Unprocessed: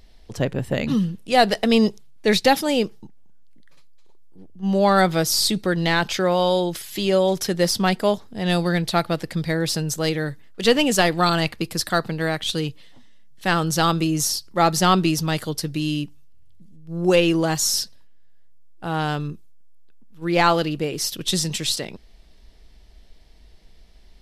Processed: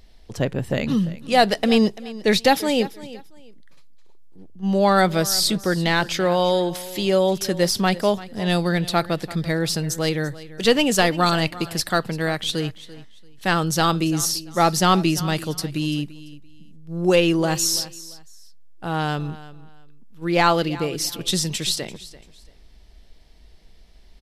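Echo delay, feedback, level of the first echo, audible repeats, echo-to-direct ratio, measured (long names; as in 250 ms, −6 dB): 340 ms, 25%, −17.5 dB, 2, −17.5 dB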